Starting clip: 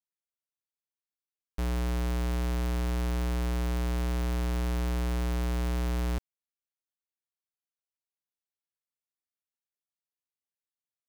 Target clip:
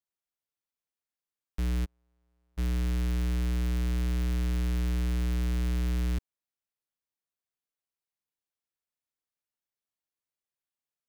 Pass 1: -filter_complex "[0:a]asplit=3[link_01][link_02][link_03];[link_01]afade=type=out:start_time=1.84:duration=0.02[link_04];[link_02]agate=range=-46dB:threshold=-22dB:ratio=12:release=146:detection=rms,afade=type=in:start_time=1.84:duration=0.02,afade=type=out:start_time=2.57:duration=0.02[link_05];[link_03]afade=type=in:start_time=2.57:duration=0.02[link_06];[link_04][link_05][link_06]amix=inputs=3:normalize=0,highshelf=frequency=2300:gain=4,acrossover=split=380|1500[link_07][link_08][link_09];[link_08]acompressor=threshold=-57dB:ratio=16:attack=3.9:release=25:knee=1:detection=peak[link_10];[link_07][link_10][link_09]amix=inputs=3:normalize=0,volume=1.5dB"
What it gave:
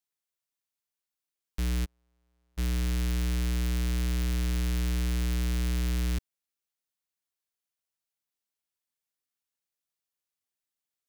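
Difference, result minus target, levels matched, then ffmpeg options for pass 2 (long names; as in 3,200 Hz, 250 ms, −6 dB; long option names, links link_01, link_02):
4,000 Hz band +5.0 dB
-filter_complex "[0:a]asplit=3[link_01][link_02][link_03];[link_01]afade=type=out:start_time=1.84:duration=0.02[link_04];[link_02]agate=range=-46dB:threshold=-22dB:ratio=12:release=146:detection=rms,afade=type=in:start_time=1.84:duration=0.02,afade=type=out:start_time=2.57:duration=0.02[link_05];[link_03]afade=type=in:start_time=2.57:duration=0.02[link_06];[link_04][link_05][link_06]amix=inputs=3:normalize=0,highshelf=frequency=2300:gain=-3.5,acrossover=split=380|1500[link_07][link_08][link_09];[link_08]acompressor=threshold=-57dB:ratio=16:attack=3.9:release=25:knee=1:detection=peak[link_10];[link_07][link_10][link_09]amix=inputs=3:normalize=0,volume=1.5dB"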